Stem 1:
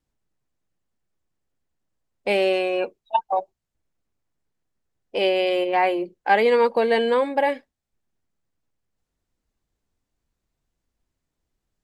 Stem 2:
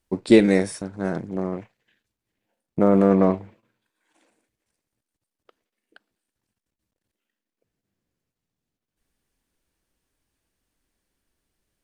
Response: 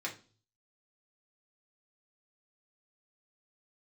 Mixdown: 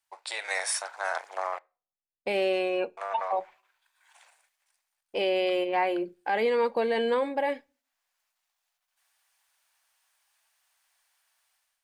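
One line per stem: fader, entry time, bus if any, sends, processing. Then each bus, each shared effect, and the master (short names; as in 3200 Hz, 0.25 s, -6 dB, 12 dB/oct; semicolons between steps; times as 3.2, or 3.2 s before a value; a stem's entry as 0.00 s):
-5.5 dB, 0.00 s, send -19.5 dB, gate with hold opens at -47 dBFS
-2.5 dB, 0.00 s, muted 1.59–2.97, send -21 dB, compressor 6:1, threshold -18 dBFS, peak gain reduction 10 dB; steep high-pass 720 Hz 36 dB/oct; AGC gain up to 11 dB; auto duck -8 dB, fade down 0.80 s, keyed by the first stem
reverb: on, RT60 0.40 s, pre-delay 3 ms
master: limiter -18 dBFS, peak gain reduction 7 dB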